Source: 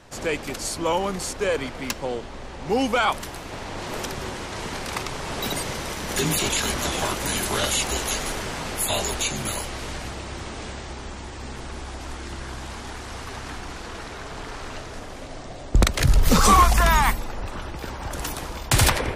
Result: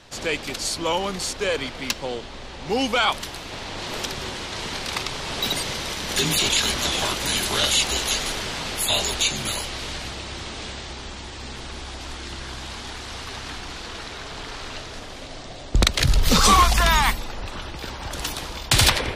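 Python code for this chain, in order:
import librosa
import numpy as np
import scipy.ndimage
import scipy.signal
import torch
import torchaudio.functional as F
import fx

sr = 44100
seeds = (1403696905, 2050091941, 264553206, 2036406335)

y = fx.peak_eq(x, sr, hz=3800.0, db=9.0, octaves=1.4)
y = F.gain(torch.from_numpy(y), -1.5).numpy()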